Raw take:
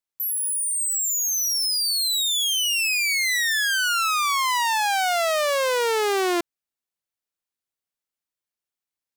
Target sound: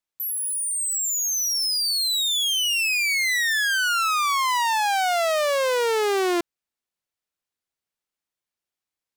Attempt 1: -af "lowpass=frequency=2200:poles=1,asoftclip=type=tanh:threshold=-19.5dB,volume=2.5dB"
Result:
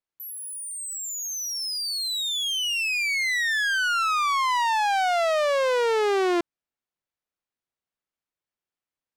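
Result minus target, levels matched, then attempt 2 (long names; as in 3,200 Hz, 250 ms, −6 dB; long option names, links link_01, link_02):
8,000 Hz band −4.5 dB
-af "lowpass=frequency=8000:poles=1,asoftclip=type=tanh:threshold=-19.5dB,volume=2.5dB"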